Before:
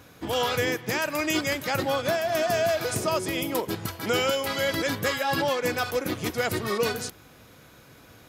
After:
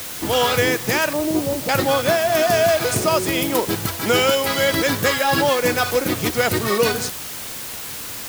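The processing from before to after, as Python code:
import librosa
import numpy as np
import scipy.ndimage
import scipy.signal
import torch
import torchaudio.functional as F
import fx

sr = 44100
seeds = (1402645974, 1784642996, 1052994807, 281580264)

y = fx.steep_lowpass(x, sr, hz=930.0, slope=36, at=(1.13, 1.69))
y = fx.dmg_noise_colour(y, sr, seeds[0], colour='white', level_db=-39.0)
y = y * librosa.db_to_amplitude(7.5)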